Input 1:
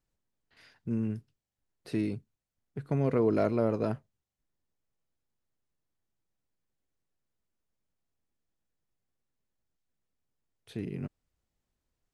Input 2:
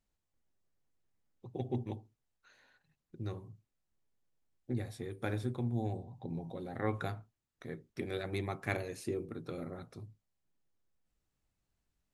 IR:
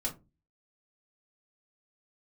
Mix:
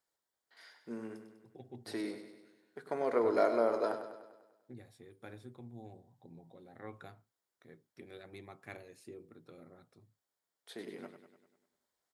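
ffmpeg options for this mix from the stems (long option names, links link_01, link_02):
-filter_complex "[0:a]highpass=510,equalizer=frequency=2600:width=6.3:gain=-14,volume=1dB,asplit=3[link_01][link_02][link_03];[link_02]volume=-12dB[link_04];[link_03]volume=-8dB[link_05];[1:a]volume=-12dB[link_06];[2:a]atrim=start_sample=2205[link_07];[link_04][link_07]afir=irnorm=-1:irlink=0[link_08];[link_05]aecho=0:1:99|198|297|396|495|594|693|792:1|0.56|0.314|0.176|0.0983|0.0551|0.0308|0.0173[link_09];[link_01][link_06][link_08][link_09]amix=inputs=4:normalize=0,highpass=frequency=170:poles=1,bandreject=frequency=6100:width=18"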